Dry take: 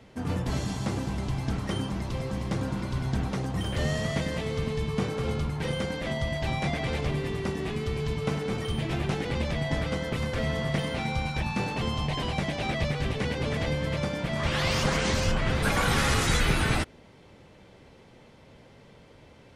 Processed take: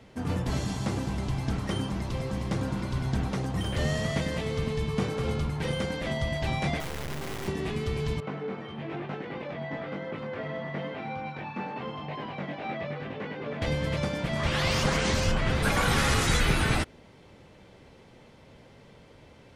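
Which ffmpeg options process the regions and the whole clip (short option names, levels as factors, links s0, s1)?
-filter_complex "[0:a]asettb=1/sr,asplit=3[s0][s1][s2];[s0]atrim=end=6.804[s3];[s1]atrim=start=6.8:end=7.48,asetpts=PTS-STARTPTS,afade=t=in:d=0.004:c=qsin,afade=t=out:st=0.676:d=0.004:c=qsin,lowpass=f=2600:w=0.5412,lowpass=f=2600:w=1.3066,asoftclip=type=hard:threshold=0.0266,acrusher=bits=3:dc=4:mix=0:aa=0.000001[s4];[s2]atrim=start=7.476[s5];[s3][s4]acrossfade=d=0.004:c1=hsin:c2=qsin[s6];[s6][s5]acrossfade=d=0.004:c1=qsin:c2=hsin,asettb=1/sr,asplit=3[s7][s8][s9];[s7]atrim=end=8.204[s10];[s8]atrim=start=8.2:end=13.62,asetpts=PTS-STARTPTS,afade=t=in:d=0.004:c=qsin,afade=t=out:st=5.416:d=0.004:c=qsin,highpass=210,lowpass=2100,flanger=delay=19:depth=2.8:speed=1[s11];[s9]atrim=start=13.616[s12];[s10][s11]acrossfade=d=0.004:c1=hsin:c2=qsin[s13];[s13][s12]acrossfade=d=0.004:c1=qsin:c2=hsin"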